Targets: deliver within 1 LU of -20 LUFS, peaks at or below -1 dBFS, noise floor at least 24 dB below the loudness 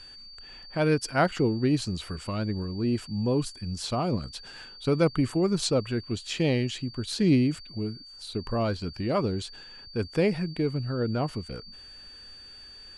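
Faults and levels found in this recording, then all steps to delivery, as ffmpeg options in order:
steady tone 4600 Hz; tone level -45 dBFS; loudness -28.0 LUFS; peak -10.5 dBFS; loudness target -20.0 LUFS
-> -af "bandreject=f=4.6k:w=30"
-af "volume=8dB"

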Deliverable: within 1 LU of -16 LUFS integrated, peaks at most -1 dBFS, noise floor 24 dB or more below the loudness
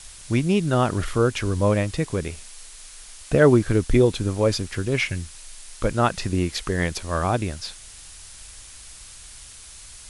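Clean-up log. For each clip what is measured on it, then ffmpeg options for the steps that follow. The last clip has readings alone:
noise floor -43 dBFS; noise floor target -47 dBFS; loudness -22.5 LUFS; peak -4.0 dBFS; loudness target -16.0 LUFS
-> -af "afftdn=nr=6:nf=-43"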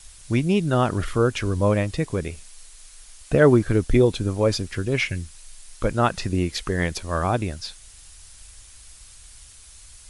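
noise floor -47 dBFS; loudness -22.5 LUFS; peak -4.0 dBFS; loudness target -16.0 LUFS
-> -af "volume=6.5dB,alimiter=limit=-1dB:level=0:latency=1"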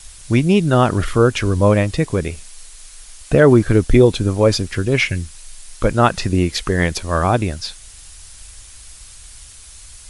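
loudness -16.5 LUFS; peak -1.0 dBFS; noise floor -41 dBFS

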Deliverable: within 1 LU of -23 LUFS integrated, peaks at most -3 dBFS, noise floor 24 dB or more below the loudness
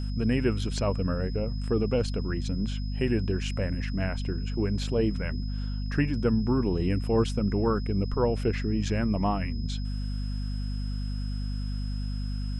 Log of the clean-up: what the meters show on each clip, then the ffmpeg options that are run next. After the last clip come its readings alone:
hum 50 Hz; harmonics up to 250 Hz; hum level -28 dBFS; steady tone 5100 Hz; tone level -47 dBFS; loudness -29.0 LUFS; peak -12.5 dBFS; loudness target -23.0 LUFS
-> -af "bandreject=f=50:t=h:w=6,bandreject=f=100:t=h:w=6,bandreject=f=150:t=h:w=6,bandreject=f=200:t=h:w=6,bandreject=f=250:t=h:w=6"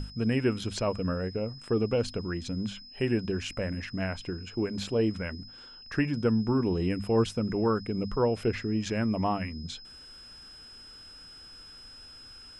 hum none; steady tone 5100 Hz; tone level -47 dBFS
-> -af "bandreject=f=5.1k:w=30"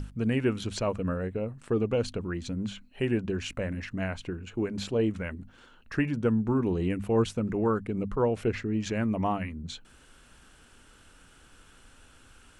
steady tone none; loudness -30.0 LUFS; peak -14.0 dBFS; loudness target -23.0 LUFS
-> -af "volume=7dB"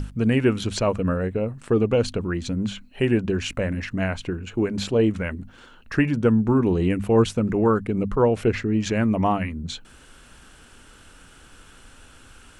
loudness -23.0 LUFS; peak -7.0 dBFS; noise floor -50 dBFS

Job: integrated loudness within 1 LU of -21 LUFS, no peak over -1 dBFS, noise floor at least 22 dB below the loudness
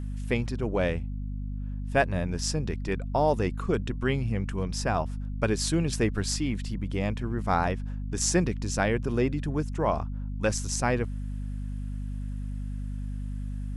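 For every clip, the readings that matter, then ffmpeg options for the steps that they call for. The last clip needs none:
hum 50 Hz; harmonics up to 250 Hz; hum level -30 dBFS; loudness -29.5 LUFS; peak -10.0 dBFS; loudness target -21.0 LUFS
-> -af "bandreject=f=50:t=h:w=4,bandreject=f=100:t=h:w=4,bandreject=f=150:t=h:w=4,bandreject=f=200:t=h:w=4,bandreject=f=250:t=h:w=4"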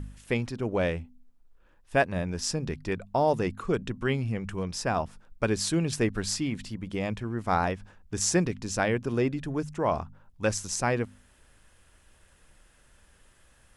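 hum none; loudness -29.5 LUFS; peak -10.5 dBFS; loudness target -21.0 LUFS
-> -af "volume=8.5dB"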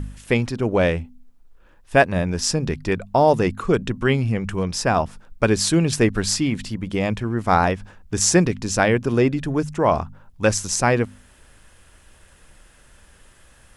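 loudness -21.0 LUFS; peak -2.0 dBFS; noise floor -52 dBFS

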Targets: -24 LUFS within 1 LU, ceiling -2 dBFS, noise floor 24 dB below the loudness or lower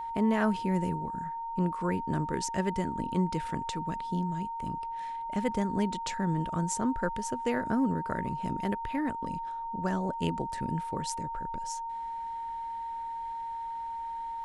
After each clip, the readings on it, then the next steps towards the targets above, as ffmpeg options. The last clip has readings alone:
steady tone 920 Hz; tone level -34 dBFS; loudness -32.5 LUFS; peak -14.0 dBFS; loudness target -24.0 LUFS
-> -af "bandreject=f=920:w=30"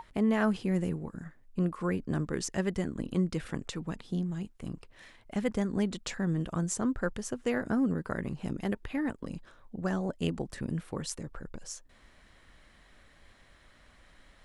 steady tone none; loudness -33.0 LUFS; peak -14.5 dBFS; loudness target -24.0 LUFS
-> -af "volume=9dB"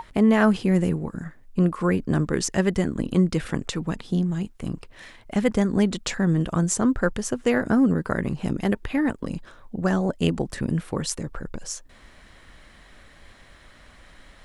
loudness -24.0 LUFS; peak -5.5 dBFS; noise floor -51 dBFS

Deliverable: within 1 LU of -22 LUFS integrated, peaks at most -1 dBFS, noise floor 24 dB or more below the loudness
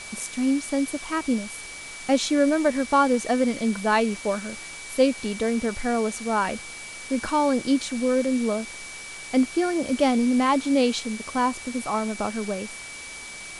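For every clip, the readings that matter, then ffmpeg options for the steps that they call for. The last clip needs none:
steady tone 2300 Hz; tone level -39 dBFS; noise floor -39 dBFS; noise floor target -49 dBFS; loudness -24.5 LUFS; peak -8.0 dBFS; loudness target -22.0 LUFS
-> -af "bandreject=f=2.3k:w=30"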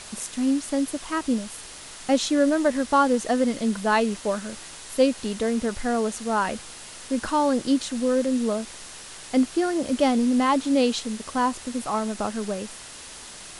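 steady tone none; noise floor -42 dBFS; noise floor target -49 dBFS
-> -af "afftdn=nr=7:nf=-42"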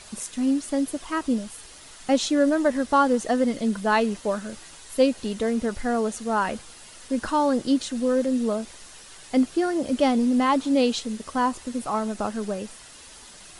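noise floor -46 dBFS; noise floor target -49 dBFS
-> -af "afftdn=nr=6:nf=-46"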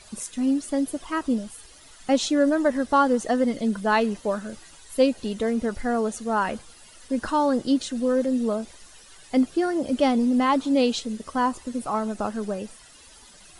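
noise floor -50 dBFS; loudness -24.5 LUFS; peak -8.0 dBFS; loudness target -22.0 LUFS
-> -af "volume=2.5dB"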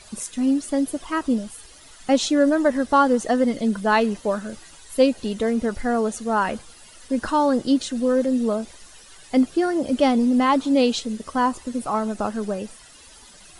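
loudness -22.0 LUFS; peak -5.5 dBFS; noise floor -47 dBFS

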